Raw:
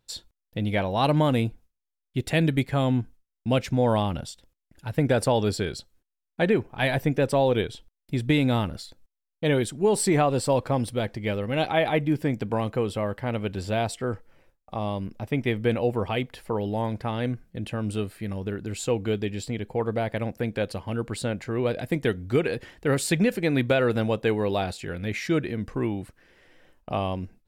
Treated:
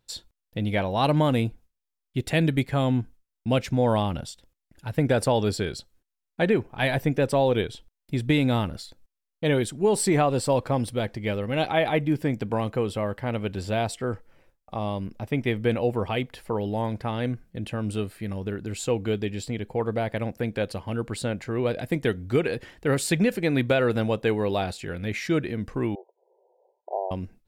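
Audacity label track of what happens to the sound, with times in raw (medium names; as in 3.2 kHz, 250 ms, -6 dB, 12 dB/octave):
25.950000	27.110000	brick-wall FIR band-pass 360–1000 Hz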